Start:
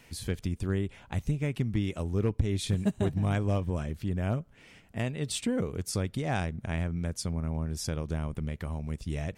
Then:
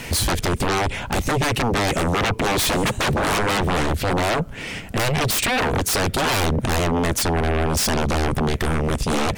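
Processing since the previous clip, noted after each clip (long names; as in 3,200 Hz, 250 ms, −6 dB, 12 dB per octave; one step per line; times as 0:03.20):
sine wavefolder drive 20 dB, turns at −17 dBFS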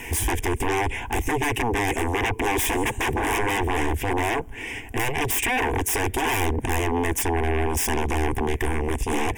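phaser with its sweep stopped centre 870 Hz, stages 8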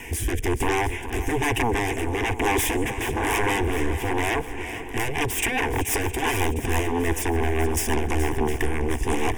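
rotating-speaker cabinet horn 1.1 Hz, later 6 Hz, at 0:04.58
feedback echo with a long and a short gap by turns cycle 709 ms, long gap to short 1.5 to 1, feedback 44%, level −12.5 dB
level +1.5 dB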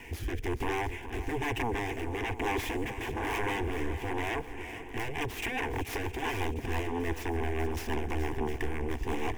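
running median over 5 samples
level −8.5 dB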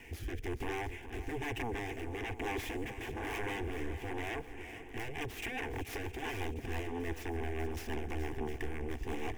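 parametric band 980 Hz −8.5 dB 0.2 octaves
level −5.5 dB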